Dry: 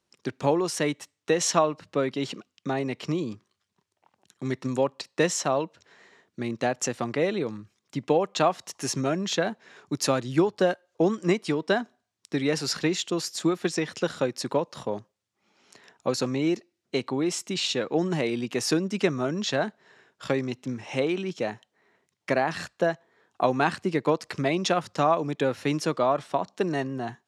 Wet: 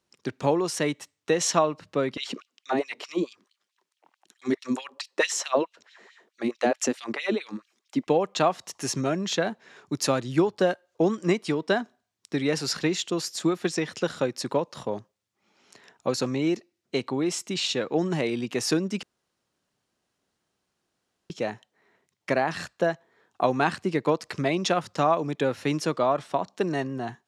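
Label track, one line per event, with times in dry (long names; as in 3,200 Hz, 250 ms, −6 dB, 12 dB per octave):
2.170000	8.070000	auto-filter high-pass sine 4.6 Hz 220–3,500 Hz
19.030000	21.300000	fill with room tone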